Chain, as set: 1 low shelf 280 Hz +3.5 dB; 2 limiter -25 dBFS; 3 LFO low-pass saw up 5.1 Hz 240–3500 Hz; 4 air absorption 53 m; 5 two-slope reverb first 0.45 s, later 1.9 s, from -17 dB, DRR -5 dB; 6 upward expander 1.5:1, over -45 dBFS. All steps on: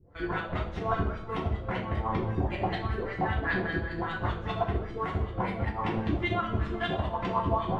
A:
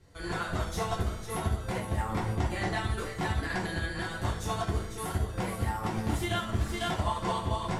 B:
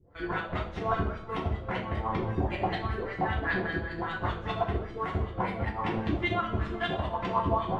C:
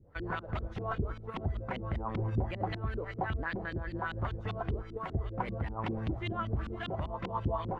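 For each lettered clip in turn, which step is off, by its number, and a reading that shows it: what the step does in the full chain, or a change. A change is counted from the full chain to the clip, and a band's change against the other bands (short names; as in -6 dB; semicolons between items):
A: 3, 4 kHz band +6.0 dB; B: 1, 125 Hz band -2.0 dB; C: 5, 125 Hz band +3.5 dB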